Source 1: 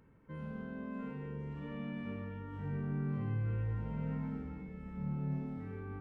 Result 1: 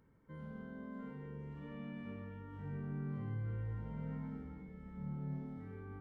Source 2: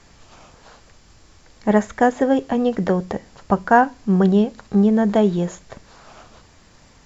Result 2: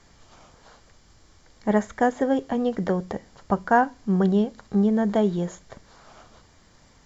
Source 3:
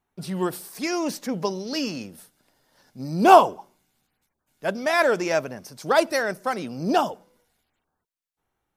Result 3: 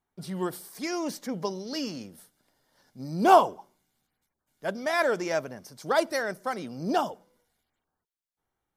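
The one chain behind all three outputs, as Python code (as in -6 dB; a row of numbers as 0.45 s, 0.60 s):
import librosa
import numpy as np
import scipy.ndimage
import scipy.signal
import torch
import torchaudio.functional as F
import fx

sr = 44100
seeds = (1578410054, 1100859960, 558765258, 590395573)

y = fx.notch(x, sr, hz=2600.0, q=10.0)
y = F.gain(torch.from_numpy(y), -5.0).numpy()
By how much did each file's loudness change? -5.0 LU, -5.0 LU, -5.0 LU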